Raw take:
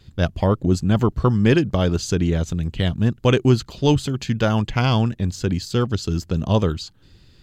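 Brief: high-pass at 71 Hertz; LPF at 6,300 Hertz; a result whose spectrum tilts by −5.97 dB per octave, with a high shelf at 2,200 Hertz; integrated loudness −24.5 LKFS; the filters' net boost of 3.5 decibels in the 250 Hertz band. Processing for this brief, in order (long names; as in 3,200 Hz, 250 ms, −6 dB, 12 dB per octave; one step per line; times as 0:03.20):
high-pass filter 71 Hz
low-pass filter 6,300 Hz
parametric band 250 Hz +4.5 dB
high-shelf EQ 2,200 Hz +6.5 dB
level −6 dB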